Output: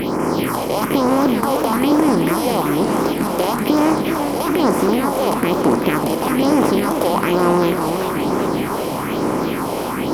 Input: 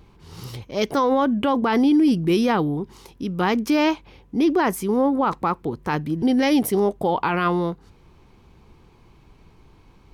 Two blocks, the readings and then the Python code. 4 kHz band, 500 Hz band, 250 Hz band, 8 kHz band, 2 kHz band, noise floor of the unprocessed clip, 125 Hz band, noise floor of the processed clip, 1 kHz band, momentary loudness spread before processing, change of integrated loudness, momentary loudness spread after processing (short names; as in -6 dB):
+5.5 dB, +6.0 dB, +4.0 dB, +10.0 dB, +4.0 dB, -53 dBFS, +5.0 dB, -23 dBFS, +5.5 dB, 12 LU, +3.5 dB, 5 LU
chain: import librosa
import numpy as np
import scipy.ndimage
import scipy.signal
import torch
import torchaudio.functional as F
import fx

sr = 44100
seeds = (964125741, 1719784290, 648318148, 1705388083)

y = fx.bin_compress(x, sr, power=0.2)
y = fx.phaser_stages(y, sr, stages=4, low_hz=230.0, high_hz=3700.0, hz=1.1, feedback_pct=25)
y = fx.echo_warbled(y, sr, ms=385, feedback_pct=64, rate_hz=2.8, cents=167, wet_db=-7.5)
y = y * librosa.db_to_amplitude(-3.0)